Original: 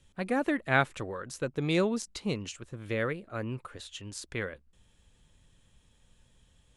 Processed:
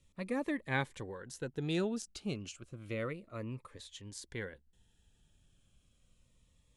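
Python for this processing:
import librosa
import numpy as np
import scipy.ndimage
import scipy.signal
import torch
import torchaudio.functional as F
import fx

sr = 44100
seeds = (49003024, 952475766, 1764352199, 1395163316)

y = fx.notch_cascade(x, sr, direction='falling', hz=0.31)
y = F.gain(torch.from_numpy(y), -5.5).numpy()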